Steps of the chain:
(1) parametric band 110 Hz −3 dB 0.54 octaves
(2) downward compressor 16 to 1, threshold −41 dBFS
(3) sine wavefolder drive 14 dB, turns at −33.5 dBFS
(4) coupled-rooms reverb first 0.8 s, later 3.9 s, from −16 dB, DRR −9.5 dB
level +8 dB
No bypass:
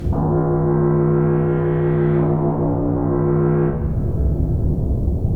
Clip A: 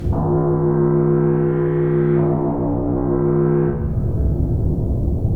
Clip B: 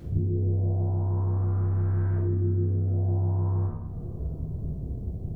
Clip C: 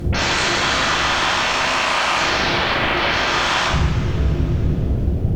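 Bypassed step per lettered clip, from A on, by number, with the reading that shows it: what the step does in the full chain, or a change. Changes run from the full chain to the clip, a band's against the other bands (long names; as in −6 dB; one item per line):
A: 1, 500 Hz band +2.0 dB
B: 3, 125 Hz band +11.0 dB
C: 2, average gain reduction 11.0 dB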